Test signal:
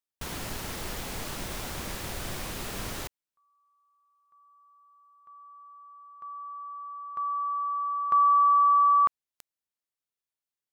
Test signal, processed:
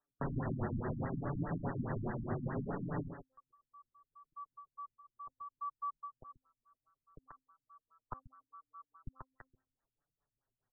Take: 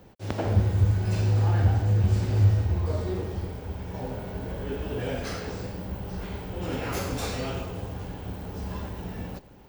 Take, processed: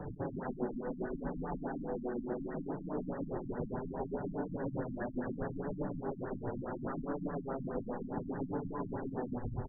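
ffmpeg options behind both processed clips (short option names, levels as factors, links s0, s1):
-filter_complex "[0:a]acompressor=threshold=0.00447:ratio=1.5:attack=32:release=288:detection=rms,asubboost=boost=2.5:cutoff=130,afftfilt=real='re*lt(hypot(re,im),0.0501)':imag='im*lt(hypot(re,im),0.0501)':win_size=1024:overlap=0.75,acrossover=split=280|5900[s0][s1][s2];[s1]acompressor=threshold=0.00282:ratio=5:attack=8.7:release=123:knee=2.83:detection=peak[s3];[s0][s3][s2]amix=inputs=3:normalize=0,bandreject=f=262.4:t=h:w=4,bandreject=f=524.8:t=h:w=4,bandreject=f=787.2:t=h:w=4,bandreject=f=1049.6:t=h:w=4,bandreject=f=1312:t=h:w=4,bandreject=f=1574.4:t=h:w=4,bandreject=f=1836.8:t=h:w=4,bandreject=f=2099.2:t=h:w=4,bandreject=f=2361.6:t=h:w=4,bandreject=f=2624:t=h:w=4,bandreject=f=2886.4:t=h:w=4,bandreject=f=3148.8:t=h:w=4,bandreject=f=3411.2:t=h:w=4,bandreject=f=3673.6:t=h:w=4,bandreject=f=3936:t=h:w=4,bandreject=f=4198.4:t=h:w=4,bandreject=f=4460.8:t=h:w=4,flanger=delay=6.7:depth=1.7:regen=0:speed=0.69:shape=triangular,highshelf=f=11000:g=-9,asplit=2[s4][s5];[s5]adelay=134.1,volume=0.355,highshelf=f=4000:g=-3.02[s6];[s4][s6]amix=inputs=2:normalize=0,acrossover=split=1300[s7][s8];[s7]aeval=exprs='val(0)*(1-0.5/2+0.5/2*cos(2*PI*7.7*n/s))':c=same[s9];[s8]aeval=exprs='val(0)*(1-0.5/2-0.5/2*cos(2*PI*7.7*n/s))':c=same[s10];[s9][s10]amix=inputs=2:normalize=0,afftfilt=real='re*lt(b*sr/1024,270*pow(2000/270,0.5+0.5*sin(2*PI*4.8*pts/sr)))':imag='im*lt(b*sr/1024,270*pow(2000/270,0.5+0.5*sin(2*PI*4.8*pts/sr)))':win_size=1024:overlap=0.75,volume=7.5"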